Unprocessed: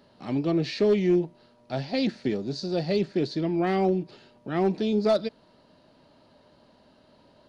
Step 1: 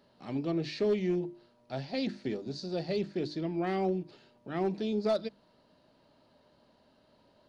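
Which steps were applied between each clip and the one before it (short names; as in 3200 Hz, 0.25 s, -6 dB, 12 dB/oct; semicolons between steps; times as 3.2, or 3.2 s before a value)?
notches 50/100/150/200/250/300/350 Hz; gain -6.5 dB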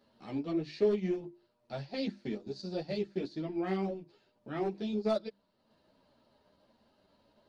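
transient shaper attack +2 dB, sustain -7 dB; ensemble effect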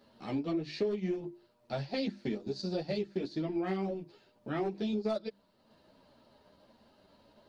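compressor 4:1, threshold -36 dBFS, peak gain reduction 11.5 dB; gain +5.5 dB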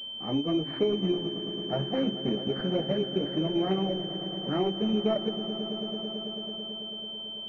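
swelling echo 0.11 s, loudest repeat 5, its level -16 dB; pulse-width modulation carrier 3100 Hz; gain +5.5 dB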